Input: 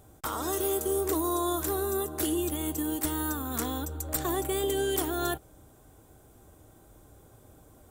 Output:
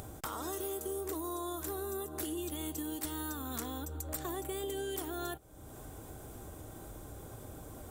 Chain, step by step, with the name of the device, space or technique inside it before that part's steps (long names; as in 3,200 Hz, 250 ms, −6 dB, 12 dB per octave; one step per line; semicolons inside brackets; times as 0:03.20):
upward and downward compression (upward compression, threshold −33 dBFS; downward compressor 3 to 1, threshold −34 dBFS, peak gain reduction 7.5 dB)
0:02.37–0:03.60: parametric band 4,200 Hz +4.5 dB 1.2 octaves
level −3 dB